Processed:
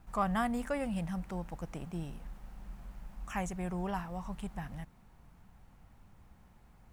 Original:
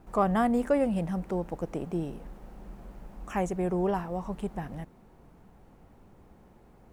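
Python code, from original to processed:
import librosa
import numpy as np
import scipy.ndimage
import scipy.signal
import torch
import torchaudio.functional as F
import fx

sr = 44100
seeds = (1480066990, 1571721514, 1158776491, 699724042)

y = fx.peak_eq(x, sr, hz=400.0, db=-14.5, octaves=1.7)
y = fx.attack_slew(y, sr, db_per_s=510.0)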